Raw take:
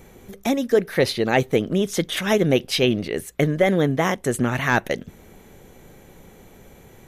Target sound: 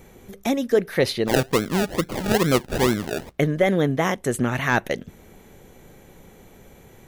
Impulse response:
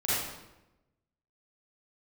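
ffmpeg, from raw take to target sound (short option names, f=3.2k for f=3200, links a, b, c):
-filter_complex "[0:a]asplit=3[a][b][c];[a]afade=t=out:st=1.27:d=0.02[d];[b]acrusher=samples=33:mix=1:aa=0.000001:lfo=1:lforange=19.8:lforate=2.3,afade=t=in:st=1.27:d=0.02,afade=t=out:st=3.37:d=0.02[e];[c]afade=t=in:st=3.37:d=0.02[f];[d][e][f]amix=inputs=3:normalize=0,volume=-1dB"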